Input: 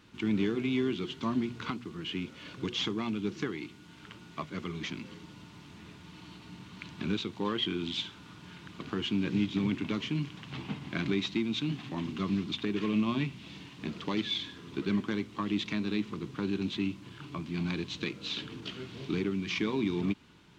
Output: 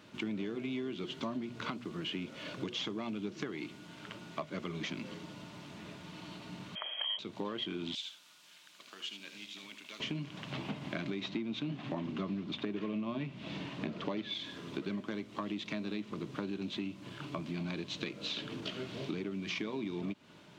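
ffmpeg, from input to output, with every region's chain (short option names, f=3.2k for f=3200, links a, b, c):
-filter_complex "[0:a]asettb=1/sr,asplit=3[a][b][c];[a]atrim=end=6.754[d];[b]atrim=start=6.75:end=7.19,asetpts=PTS-STARTPTS,afade=t=in:d=0.004:c=qsin,afade=t=out:st=0.436:d=0.004:c=qsin,lowpass=f=2.9k:t=q:w=0.5098,lowpass=f=2.9k:t=q:w=0.6013,lowpass=f=2.9k:t=q:w=0.9,lowpass=f=2.9k:t=q:w=2.563,afreqshift=-3400,aemphasis=mode=production:type=riaa[e];[c]atrim=start=7.186[f];[d][e]acrossfade=d=0.004:c1=hsin:c2=qsin[g];[g][f]acrossfade=d=0.004:c1=qsin:c2=hsin,asettb=1/sr,asplit=3[h][i][j];[h]atrim=end=7.954[k];[i]atrim=start=7.95:end=10,asetpts=PTS-STARTPTS,afade=t=in:d=0.004:c=qsin,afade=t=out:st=2.046:d=0.004:c=qsin,aderivative,aecho=1:1:77:0.398,atrim=end_sample=90405[l];[j]atrim=start=9.996[m];[k][l]acrossfade=d=0.004:c1=hsin:c2=qsin[n];[n][m]acrossfade=d=0.004:c1=qsin:c2=hsin,asettb=1/sr,asplit=3[o][p][q];[o]atrim=end=11.214[r];[p]atrim=start=11.21:end=14.34,asetpts=PTS-STARTPTS,afade=t=in:d=0.004:c=qsin,afade=t=out:st=3.126:d=0.004:c=qsin,lowpass=f=2.5k:p=1,acontrast=38[s];[q]atrim=start=14.336[t];[r][s]acrossfade=d=0.004:c1=hsin:c2=qsin[u];[u][t]acrossfade=d=0.004:c1=qsin:c2=hsin,highpass=120,equalizer=f=610:t=o:w=0.34:g=12.5,acompressor=threshold=-37dB:ratio=6,volume=2dB"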